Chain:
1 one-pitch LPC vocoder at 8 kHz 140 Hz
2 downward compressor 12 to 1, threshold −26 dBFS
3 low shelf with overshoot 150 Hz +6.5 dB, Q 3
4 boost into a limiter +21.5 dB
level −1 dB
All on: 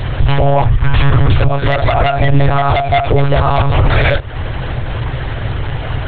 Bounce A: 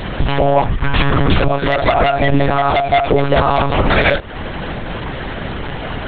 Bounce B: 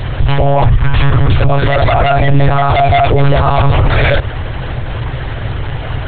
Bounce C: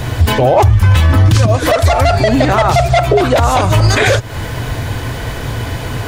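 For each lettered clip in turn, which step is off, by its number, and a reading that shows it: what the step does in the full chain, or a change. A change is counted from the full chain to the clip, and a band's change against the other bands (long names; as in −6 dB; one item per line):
3, 125 Hz band −8.0 dB
2, average gain reduction 6.5 dB
1, 4 kHz band +2.0 dB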